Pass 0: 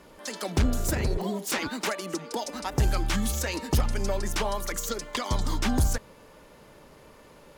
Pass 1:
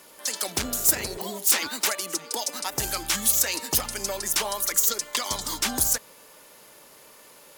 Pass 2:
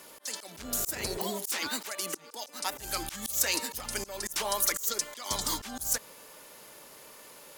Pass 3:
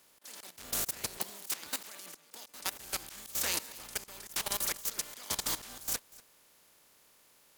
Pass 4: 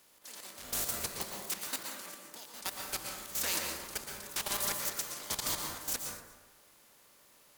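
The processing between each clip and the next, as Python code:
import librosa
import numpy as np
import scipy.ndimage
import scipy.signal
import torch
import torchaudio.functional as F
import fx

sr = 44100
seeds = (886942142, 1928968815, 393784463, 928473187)

y1 = fx.riaa(x, sr, side='recording')
y2 = fx.auto_swell(y1, sr, attack_ms=252.0)
y3 = fx.spec_flatten(y2, sr, power=0.4)
y3 = fx.level_steps(y3, sr, step_db=16)
y3 = y3 + 10.0 ** (-21.5 / 20.0) * np.pad(y3, (int(241 * sr / 1000.0), 0))[:len(y3)]
y4 = 10.0 ** (-24.5 / 20.0) * np.tanh(y3 / 10.0 ** (-24.5 / 20.0))
y4 = fx.rev_plate(y4, sr, seeds[0], rt60_s=1.1, hf_ratio=0.4, predelay_ms=105, drr_db=1.0)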